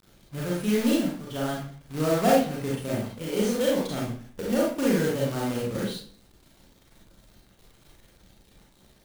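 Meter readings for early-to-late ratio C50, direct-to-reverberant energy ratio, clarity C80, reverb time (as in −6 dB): 0.5 dB, −4.5 dB, 6.0 dB, 0.50 s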